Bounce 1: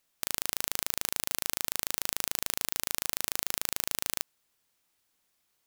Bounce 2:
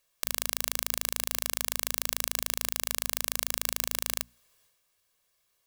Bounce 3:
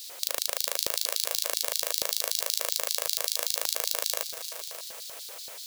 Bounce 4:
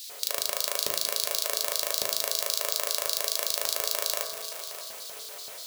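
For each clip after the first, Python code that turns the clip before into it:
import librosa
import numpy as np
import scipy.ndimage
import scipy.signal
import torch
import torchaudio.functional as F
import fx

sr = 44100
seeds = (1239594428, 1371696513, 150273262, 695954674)

y1 = fx.hum_notches(x, sr, base_hz=60, count=4)
y1 = y1 + 0.59 * np.pad(y1, (int(1.8 * sr / 1000.0), 0))[:len(y1)]
y1 = fx.transient(y1, sr, attack_db=0, sustain_db=7)
y2 = fx.dmg_noise_colour(y1, sr, seeds[0], colour='white', level_db=-44.0)
y2 = fx.echo_heads(y2, sr, ms=192, heads='second and third', feedback_pct=45, wet_db=-13)
y2 = fx.filter_lfo_highpass(y2, sr, shape='square', hz=5.2, low_hz=540.0, high_hz=4200.0, q=3.2)
y3 = fx.rev_fdn(y2, sr, rt60_s=1.1, lf_ratio=1.1, hf_ratio=0.25, size_ms=14.0, drr_db=2.5)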